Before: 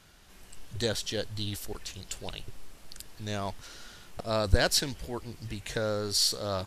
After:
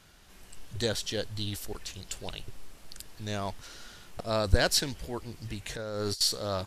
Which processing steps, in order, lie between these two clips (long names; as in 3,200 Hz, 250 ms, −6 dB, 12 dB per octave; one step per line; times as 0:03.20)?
0:05.75–0:06.21: compressor whose output falls as the input rises −33 dBFS, ratio −0.5